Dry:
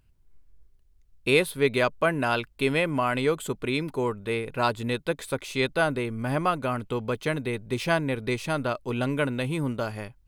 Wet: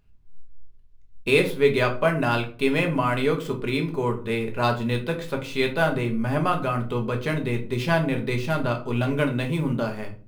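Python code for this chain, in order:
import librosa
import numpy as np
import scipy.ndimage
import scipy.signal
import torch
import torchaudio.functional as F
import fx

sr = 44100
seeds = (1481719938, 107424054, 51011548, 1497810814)

y = scipy.ndimage.median_filter(x, 5, mode='constant')
y = fx.room_shoebox(y, sr, seeds[0], volume_m3=250.0, walls='furnished', distance_m=1.3)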